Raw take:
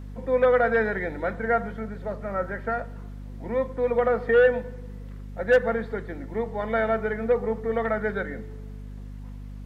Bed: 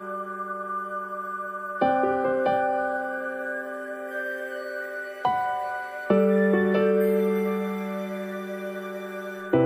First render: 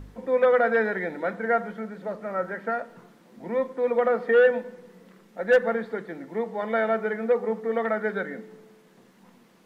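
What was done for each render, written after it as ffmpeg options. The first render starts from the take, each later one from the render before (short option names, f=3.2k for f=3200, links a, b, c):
-af "bandreject=f=50:t=h:w=4,bandreject=f=100:t=h:w=4,bandreject=f=150:t=h:w=4,bandreject=f=200:t=h:w=4,bandreject=f=250:t=h:w=4"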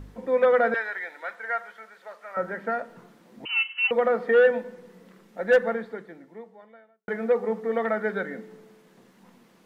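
-filter_complex "[0:a]asettb=1/sr,asplit=3[a][b][c];[a]atrim=end=0.744[d];[b]atrim=start=0.74:end=2.37,asetpts=PTS-STARTPTS,afade=t=in:d=0.004:c=qsin,afade=t=out:st=1.626:d=0.004:c=qsin,highpass=1.1k[e];[c]atrim=start=2.366[f];[d][e]acrossfade=d=0.004:c1=hsin:c2=qsin[g];[g][f]acrossfade=d=0.004:c1=qsin:c2=hsin,asettb=1/sr,asplit=3[h][i][j];[h]atrim=end=3.454[k];[i]atrim=start=3.45:end=3.91,asetpts=PTS-STARTPTS,afade=t=in:d=0.004:c=qsin,afade=t=out:st=0.456:d=0.004:c=qsin,lowpass=f=2.7k:t=q:w=0.5098,lowpass=f=2.7k:t=q:w=0.6013,lowpass=f=2.7k:t=q:w=0.9,lowpass=f=2.7k:t=q:w=2.563,afreqshift=-3200[l];[j]atrim=start=3.906[m];[k][l]acrossfade=d=0.004:c1=hsin:c2=qsin[n];[n][m]acrossfade=d=0.004:c1=qsin:c2=hsin,asplit=2[o][p];[o]atrim=end=7.08,asetpts=PTS-STARTPTS,afade=t=out:st=5.58:d=1.5:c=qua[q];[p]atrim=start=7.08,asetpts=PTS-STARTPTS,afade=t=in:d=0.004:c=hsin[r];[q][r]concat=n=2:v=0:a=1"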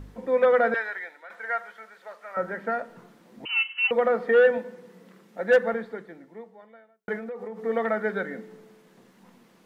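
-filter_complex "[0:a]asettb=1/sr,asplit=3[a][b][c];[a]atrim=end=4.574[d];[b]atrim=start=4.57:end=5.74,asetpts=PTS-STARTPTS,afade=t=in:d=0.004:c=qsin,afade=t=out:st=1.166:d=0.004:c=qsin,highpass=93[e];[c]atrim=start=5.736[f];[d][e]acrossfade=d=0.004:c1=hsin:c2=qsin[g];[g][f]acrossfade=d=0.004:c1=qsin:c2=hsin,asettb=1/sr,asplit=3[h][i][j];[h]atrim=end=7.174[k];[i]atrim=start=7.17:end=7.65,asetpts=PTS-STARTPTS,afade=t=in:d=0.004:c=qsin,afade=t=out:st=0.476:d=0.004:c=qsin,acompressor=threshold=-32dB:ratio=10:attack=3.2:release=140:knee=1:detection=peak[l];[j]atrim=start=7.646[m];[k][l]acrossfade=d=0.004:c1=hsin:c2=qsin[n];[n][m]acrossfade=d=0.004:c1=qsin:c2=hsin,asplit=2[o][p];[o]atrim=end=1.3,asetpts=PTS-STARTPTS,afade=t=out:st=0.73:d=0.57:c=qsin:silence=0.211349[q];[p]atrim=start=1.3,asetpts=PTS-STARTPTS,afade=t=in:d=0.004:c=hsin:silence=0.211349[r];[q][r]concat=n=2:v=0:a=1"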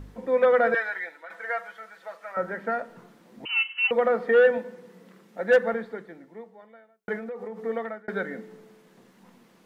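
-filter_complex "[0:a]asettb=1/sr,asplit=3[a][b][c];[a]atrim=end=0.664[d];[b]atrim=start=0.66:end=2.32,asetpts=PTS-STARTPTS,afade=t=in:d=0.004:c=qsin,afade=t=out:st=1.656:d=0.004:c=qsin,aecho=1:1:6.1:0.65,atrim=end_sample=73206[e];[c]atrim=start=2.316[f];[d][e]acrossfade=d=0.004:c1=hsin:c2=qsin[g];[g][f]acrossfade=d=0.004:c1=qsin:c2=hsin,asplit=2[h][i];[h]atrim=end=8.08,asetpts=PTS-STARTPTS,afade=t=out:st=7.58:d=0.5[j];[i]atrim=start=8.08,asetpts=PTS-STARTPTS,afade=t=in:d=0.004:c=hsin[k];[j][k]concat=n=2:v=0:a=1"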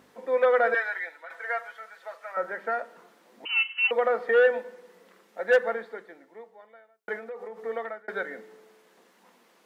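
-af "highpass=440"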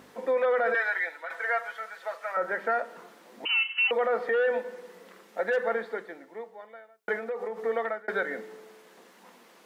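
-filter_complex "[0:a]asplit=2[a][b];[b]acompressor=threshold=-32dB:ratio=6,volume=-1dB[c];[a][c]amix=inputs=2:normalize=0,alimiter=limit=-18.5dB:level=0:latency=1:release=13"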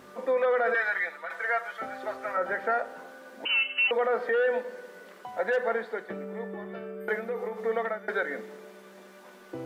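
-filter_complex "[1:a]volume=-18dB[a];[0:a][a]amix=inputs=2:normalize=0"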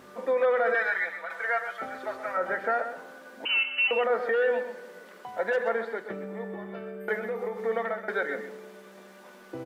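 -af "aecho=1:1:129:0.316"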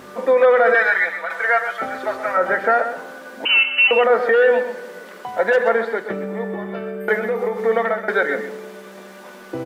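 -af "volume=10.5dB"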